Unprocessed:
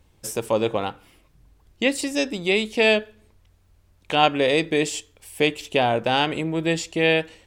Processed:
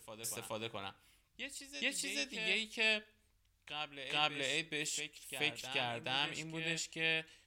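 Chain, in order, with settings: amplifier tone stack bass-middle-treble 5-5-5; reverse echo 426 ms -8.5 dB; trim -3 dB

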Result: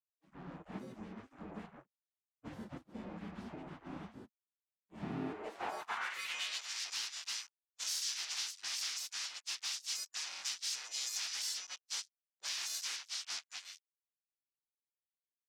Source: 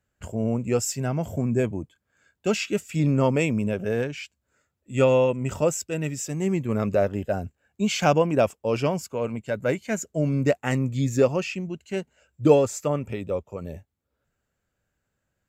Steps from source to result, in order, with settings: partials quantised in pitch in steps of 3 st; low-pass 7.5 kHz 12 dB/octave; peaking EQ 590 Hz +6 dB 2.2 oct; feedback comb 120 Hz, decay 0.24 s, harmonics odd, mix 30%; reverberation RT60 0.65 s, pre-delay 37 ms, DRR 19 dB; fuzz box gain 29 dB, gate -37 dBFS; spectral gate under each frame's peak -20 dB weak; band-pass sweep 210 Hz -> 5.4 kHz, 5.15–6.64 s; compression, threshold -32 dBFS, peak gain reduction 6.5 dB; tape noise reduction on one side only decoder only; trim -2 dB

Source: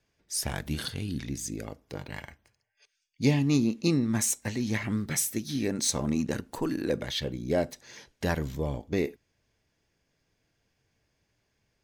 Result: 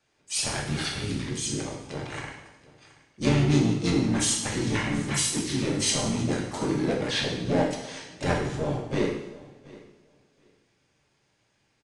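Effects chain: high-pass 190 Hz 6 dB/octave; in parallel at -5.5 dB: wavefolder -28.5 dBFS; on the sum: harmony voices -12 st -5 dB, -4 st -7 dB, +5 st -7 dB; two-slope reverb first 0.83 s, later 2.6 s, from -21 dB, DRR -0.5 dB; resampled via 22.05 kHz; on a send: feedback delay 726 ms, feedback 16%, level -21 dB; on the sum: trim -2.5 dB

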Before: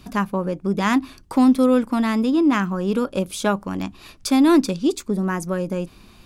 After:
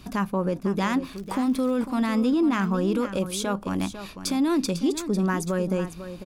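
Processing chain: peak limiter -16.5 dBFS, peak gain reduction 10 dB; 1.03–1.83 s: crackle 140 per s -37 dBFS; delay 499 ms -11.5 dB

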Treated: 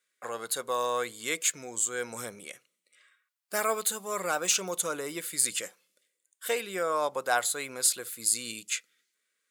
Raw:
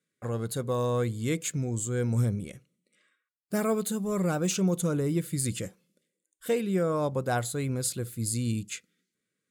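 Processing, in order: high-pass 820 Hz 12 dB/octave; trim +6.5 dB

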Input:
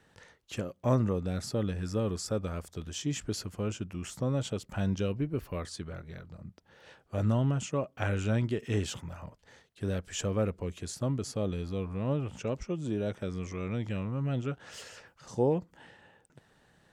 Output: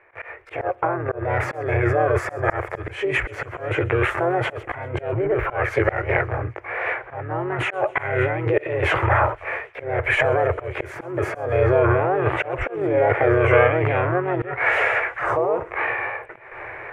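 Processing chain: treble shelf 7.2 kHz -2.5 dB; harmony voices +5 st 0 dB; in parallel at +1 dB: peak limiter -21.5 dBFS, peak gain reduction 11.5 dB; on the sum: compressor with a negative ratio -29 dBFS, ratio -1; gate with hold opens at -40 dBFS; harmonic-percussive split percussive -6 dB; FFT filter 120 Hz 0 dB, 210 Hz -30 dB, 350 Hz +9 dB, 2.2 kHz +14 dB, 4.2 kHz -23 dB; slow attack 221 ms; on a send: feedback echo behind a high-pass 130 ms, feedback 70%, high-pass 3 kHz, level -20 dB; on the sum: trim +8.5 dB

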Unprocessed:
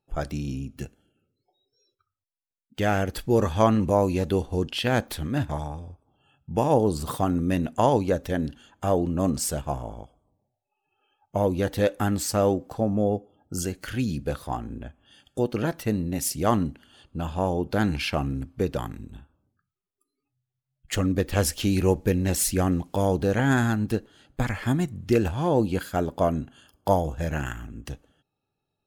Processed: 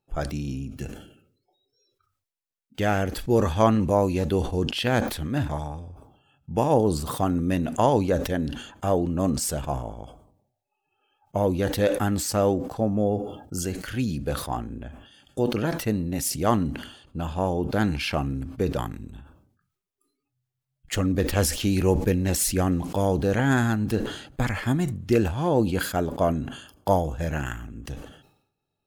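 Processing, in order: decay stretcher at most 79 dB/s

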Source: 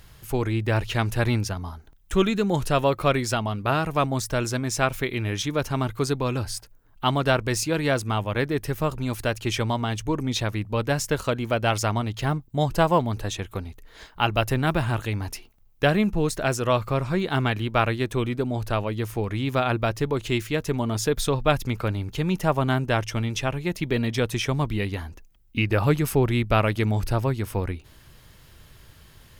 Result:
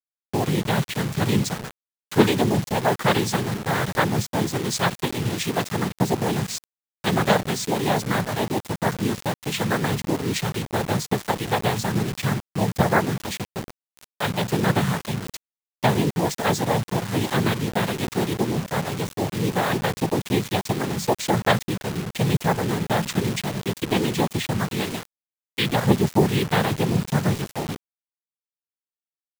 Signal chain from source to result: rotary cabinet horn 1.2 Hz; noise-vocoded speech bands 6; word length cut 6-bit, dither none; trim +3.5 dB

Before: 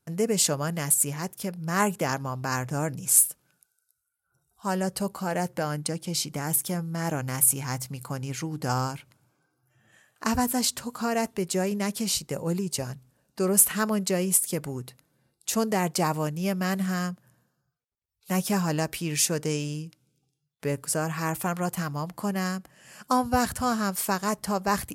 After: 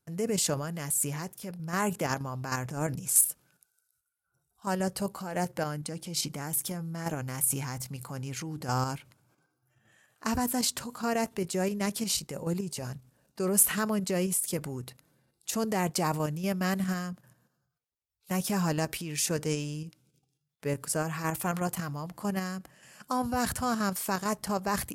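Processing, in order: level held to a coarse grid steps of 9 dB; transient shaper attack -2 dB, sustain +4 dB

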